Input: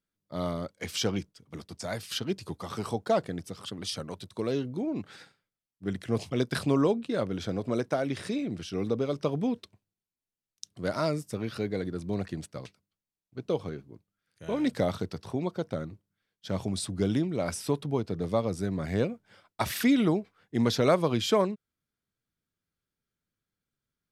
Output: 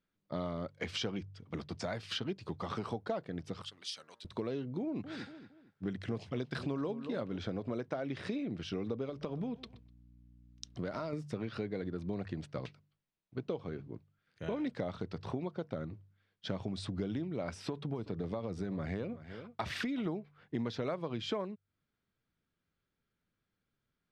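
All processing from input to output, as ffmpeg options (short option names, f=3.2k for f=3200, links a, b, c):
-filter_complex "[0:a]asettb=1/sr,asplit=3[a][b][c];[a]atrim=end=3.624[d];[b]atrim=start=3.62:end=4.25,asetpts=PTS-STARTPTS,afade=t=in:d=0.004:c=qsin,afade=t=out:st=0.626:d=0.004:c=qsin,aderivative,bandreject=f=116.3:t=h:w=4,bandreject=f=232.6:t=h:w=4,bandreject=f=348.9:t=h:w=4,bandreject=f=465.2:t=h:w=4,bandreject=f=581.5:t=h:w=4,bandreject=f=697.8:t=h:w=4,bandreject=f=814.1:t=h:w=4,bandreject=f=930.4:t=h:w=4,bandreject=f=1.0467k:t=h:w=4,bandreject=f=1.163k:t=h:w=4,bandreject=f=1.2793k:t=h:w=4,bandreject=f=1.3956k:t=h:w=4,bandreject=f=1.5119k:t=h:w=4,bandreject=f=1.6282k:t=h:w=4,bandreject=f=1.7445k:t=h:w=4,bandreject=f=1.8608k:t=h:w=4,bandreject=f=1.9771k:t=h:w=4,bandreject=f=2.0934k:t=h:w=4[e];[c]atrim=start=4.246[f];[d][e]acrossfade=d=0.004:c1=hsin:c2=qsin[g];[g][f]acrossfade=d=0.004:c1=qsin:c2=hsin,asettb=1/sr,asplit=3[h][i][j];[h]atrim=end=4.814[k];[i]atrim=start=4.81:end=7.37,asetpts=PTS-STARTPTS,afade=t=in:d=0.004:c=qsin,afade=t=out:st=2.556:d=0.004:c=qsin,bass=f=250:g=1,treble=f=4k:g=4,asplit=2[l][m];[m]adelay=229,lowpass=f=2.9k:p=1,volume=-15dB,asplit=2[n][o];[o]adelay=229,lowpass=f=2.9k:p=1,volume=0.32,asplit=2[p][q];[q]adelay=229,lowpass=f=2.9k:p=1,volume=0.32[r];[l][n][p][r]amix=inputs=4:normalize=0,atrim=end_sample=112896[s];[j]atrim=start=7.366[t];[k][s]acrossfade=d=0.004:c1=hsin:c2=qsin[u];[u][t]acrossfade=d=0.004:c1=qsin:c2=hsin,asettb=1/sr,asplit=3[v][w][x];[v]atrim=end=9.094[y];[w]atrim=start=9.09:end=11.13,asetpts=PTS-STARTPTS,afade=t=in:d=0.004:c=qsin,afade=t=out:st=2.036:d=0.004:c=qsin,acompressor=threshold=-31dB:ratio=4:attack=3.2:release=140:knee=1:detection=peak,aeval=exprs='val(0)+0.000794*(sin(2*PI*60*n/s)+sin(2*PI*2*60*n/s)/2+sin(2*PI*3*60*n/s)/3+sin(2*PI*4*60*n/s)/4+sin(2*PI*5*60*n/s)/5)':c=same,aecho=1:1:125|250:0.0891|0.0223,atrim=end_sample=89964[z];[x]atrim=start=11.126[aa];[y][z]acrossfade=d=0.004:c1=hsin:c2=qsin[ab];[ab][aa]acrossfade=d=0.004:c1=qsin:c2=hsin,asettb=1/sr,asplit=3[ac][ad][ae];[ac]atrim=end=17.584[af];[ad]atrim=start=17.58:end=20.06,asetpts=PTS-STARTPTS,afade=t=in:d=0.004:c=qsin,afade=t=out:st=2.476:d=0.004:c=qsin,acompressor=threshold=-26dB:ratio=4:attack=3.2:release=140:knee=1:detection=peak,aecho=1:1:375:0.1,atrim=end_sample=109368[ag];[ae]atrim=start=20.056[ah];[af][ag]acrossfade=d=0.004:c1=hsin:c2=qsin[ai];[ai][ah]acrossfade=d=0.004:c1=qsin:c2=hsin,lowpass=3.6k,bandreject=f=48.96:t=h:w=4,bandreject=f=97.92:t=h:w=4,bandreject=f=146.88:t=h:w=4,acompressor=threshold=-39dB:ratio=5,volume=4dB"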